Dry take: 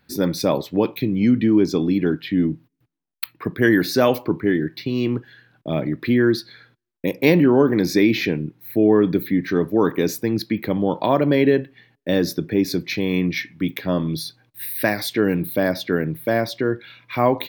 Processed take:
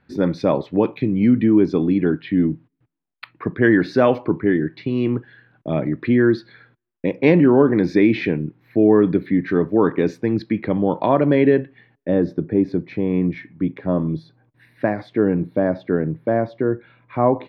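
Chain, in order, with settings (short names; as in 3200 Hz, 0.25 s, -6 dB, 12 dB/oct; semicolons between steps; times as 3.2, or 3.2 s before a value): LPF 2200 Hz 12 dB/oct, from 12.09 s 1100 Hz; gain +1.5 dB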